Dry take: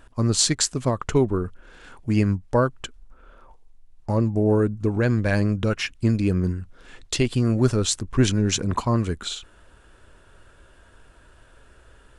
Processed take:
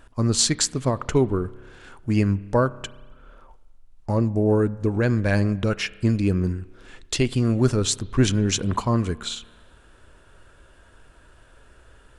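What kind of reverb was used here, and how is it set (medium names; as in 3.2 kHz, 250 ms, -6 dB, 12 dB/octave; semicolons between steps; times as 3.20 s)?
spring tank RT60 1.4 s, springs 30 ms, chirp 45 ms, DRR 18.5 dB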